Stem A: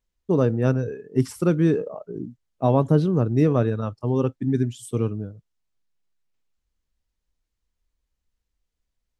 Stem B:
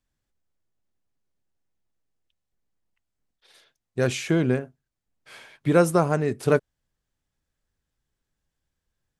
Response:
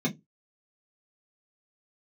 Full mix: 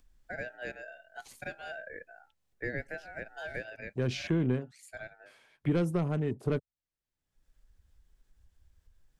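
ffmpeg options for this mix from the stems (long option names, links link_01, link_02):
-filter_complex "[0:a]highpass=frequency=560:width=0.5412,highpass=frequency=560:width=1.3066,highshelf=frequency=2100:gain=-8.5,aeval=exprs='val(0)*sin(2*PI*1100*n/s)':channel_layout=same,volume=-3dB[link_01];[1:a]acompressor=mode=upward:threshold=-35dB:ratio=2.5,afwtdn=0.0126,asoftclip=type=tanh:threshold=-12dB,volume=-3.5dB,asplit=2[link_02][link_03];[link_03]apad=whole_len=405464[link_04];[link_01][link_04]sidechaincompress=threshold=-41dB:ratio=8:attack=26:release=193[link_05];[link_05][link_02]amix=inputs=2:normalize=0,acrossover=split=330|3000[link_06][link_07][link_08];[link_07]acompressor=threshold=-39dB:ratio=3[link_09];[link_06][link_09][link_08]amix=inputs=3:normalize=0"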